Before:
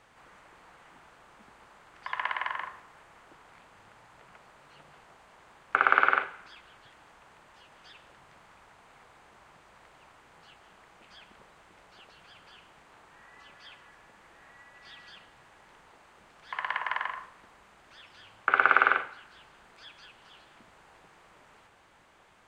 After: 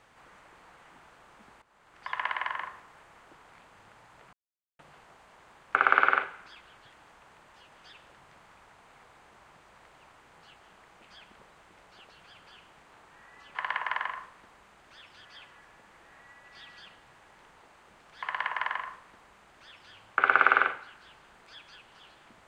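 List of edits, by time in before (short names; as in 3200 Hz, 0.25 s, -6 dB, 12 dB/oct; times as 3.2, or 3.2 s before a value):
1.62–2.08 fade in, from -16 dB
4.33–4.79 mute
16.55–18.25 copy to 13.55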